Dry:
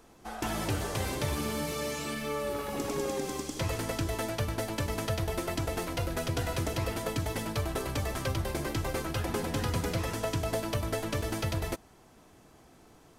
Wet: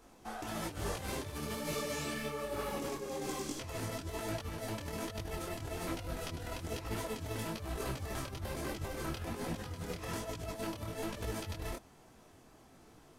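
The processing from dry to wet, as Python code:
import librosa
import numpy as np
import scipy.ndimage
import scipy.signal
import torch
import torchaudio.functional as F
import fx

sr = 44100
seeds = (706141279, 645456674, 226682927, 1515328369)

y = fx.over_compress(x, sr, threshold_db=-34.0, ratio=-0.5)
y = fx.detune_double(y, sr, cents=40)
y = y * librosa.db_to_amplitude(-1.0)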